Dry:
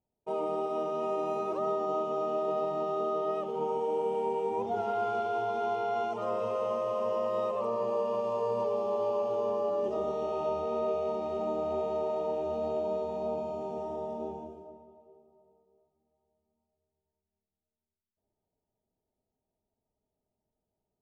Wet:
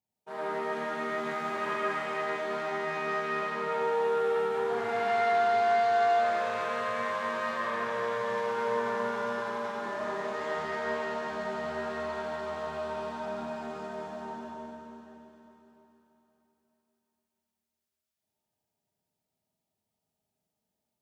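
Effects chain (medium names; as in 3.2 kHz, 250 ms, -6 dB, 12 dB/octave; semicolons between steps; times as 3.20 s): self-modulated delay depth 0.2 ms; high-pass 150 Hz 12 dB/octave; peaking EQ 410 Hz -12 dB 2.1 oct; Schroeder reverb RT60 3.6 s, DRR -7 dB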